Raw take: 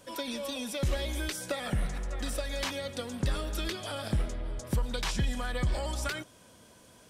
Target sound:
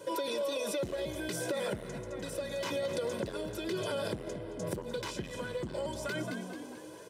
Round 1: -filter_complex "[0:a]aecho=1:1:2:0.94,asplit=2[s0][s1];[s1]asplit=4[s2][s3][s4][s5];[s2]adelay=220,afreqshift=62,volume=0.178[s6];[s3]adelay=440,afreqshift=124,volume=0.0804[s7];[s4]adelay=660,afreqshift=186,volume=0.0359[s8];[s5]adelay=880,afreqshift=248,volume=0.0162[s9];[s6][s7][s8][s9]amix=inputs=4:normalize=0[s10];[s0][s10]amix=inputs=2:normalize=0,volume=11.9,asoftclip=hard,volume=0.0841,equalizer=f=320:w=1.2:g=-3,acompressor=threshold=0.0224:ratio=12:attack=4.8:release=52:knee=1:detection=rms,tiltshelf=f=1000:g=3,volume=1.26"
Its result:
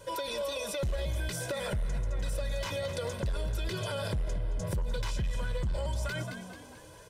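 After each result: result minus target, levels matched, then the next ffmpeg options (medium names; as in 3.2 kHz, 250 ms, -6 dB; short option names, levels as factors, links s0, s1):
125 Hz band +7.5 dB; 250 Hz band -5.5 dB
-filter_complex "[0:a]aecho=1:1:2:0.94,asplit=2[s0][s1];[s1]asplit=4[s2][s3][s4][s5];[s2]adelay=220,afreqshift=62,volume=0.178[s6];[s3]adelay=440,afreqshift=124,volume=0.0804[s7];[s4]adelay=660,afreqshift=186,volume=0.0359[s8];[s5]adelay=880,afreqshift=248,volume=0.0162[s9];[s6][s7][s8][s9]amix=inputs=4:normalize=0[s10];[s0][s10]amix=inputs=2:normalize=0,volume=11.9,asoftclip=hard,volume=0.0841,equalizer=f=320:w=1.2:g=-3,acompressor=threshold=0.0224:ratio=12:attack=4.8:release=52:knee=1:detection=rms,highpass=170,tiltshelf=f=1000:g=3,volume=1.26"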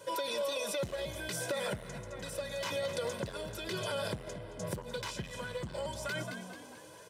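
250 Hz band -4.5 dB
-filter_complex "[0:a]aecho=1:1:2:0.94,asplit=2[s0][s1];[s1]asplit=4[s2][s3][s4][s5];[s2]adelay=220,afreqshift=62,volume=0.178[s6];[s3]adelay=440,afreqshift=124,volume=0.0804[s7];[s4]adelay=660,afreqshift=186,volume=0.0359[s8];[s5]adelay=880,afreqshift=248,volume=0.0162[s9];[s6][s7][s8][s9]amix=inputs=4:normalize=0[s10];[s0][s10]amix=inputs=2:normalize=0,volume=11.9,asoftclip=hard,volume=0.0841,equalizer=f=320:w=1.2:g=8,acompressor=threshold=0.0224:ratio=12:attack=4.8:release=52:knee=1:detection=rms,highpass=170,tiltshelf=f=1000:g=3,volume=1.26"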